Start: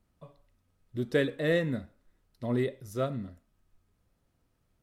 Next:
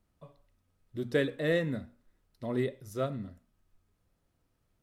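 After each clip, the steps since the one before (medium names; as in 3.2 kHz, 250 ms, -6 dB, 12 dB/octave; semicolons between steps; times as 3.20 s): hum notches 60/120/180/240 Hz; trim -1.5 dB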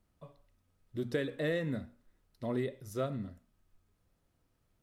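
compression, threshold -29 dBFS, peak gain reduction 7 dB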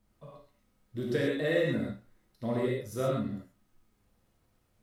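gated-style reverb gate 160 ms flat, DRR -4 dB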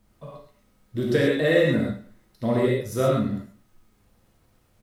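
feedback delay 105 ms, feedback 30%, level -19 dB; trim +8.5 dB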